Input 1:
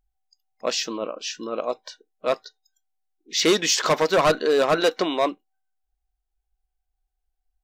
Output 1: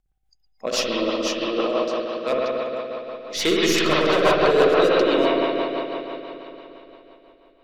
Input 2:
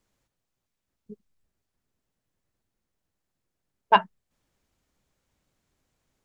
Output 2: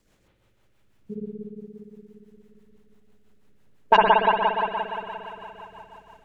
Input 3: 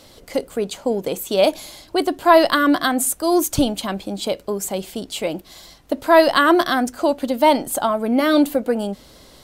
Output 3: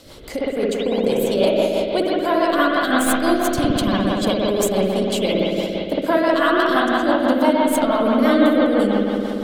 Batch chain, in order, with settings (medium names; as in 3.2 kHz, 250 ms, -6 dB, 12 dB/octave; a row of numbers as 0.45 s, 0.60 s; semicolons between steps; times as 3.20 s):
tracing distortion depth 0.022 ms; compression 6:1, threshold -21 dBFS; transient shaper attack -2 dB, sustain -8 dB; spring tank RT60 3.6 s, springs 58 ms, chirp 75 ms, DRR -6.5 dB; rotary cabinet horn 6 Hz; peak normalisation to -3 dBFS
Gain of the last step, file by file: +3.5 dB, +11.5 dB, +4.5 dB